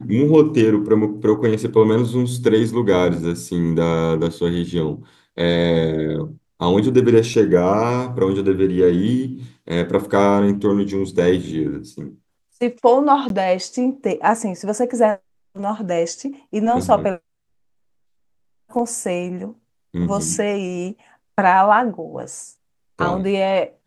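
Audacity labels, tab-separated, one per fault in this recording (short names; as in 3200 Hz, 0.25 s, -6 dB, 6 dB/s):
7.340000	7.340000	gap 2.4 ms
13.290000	13.300000	gap 12 ms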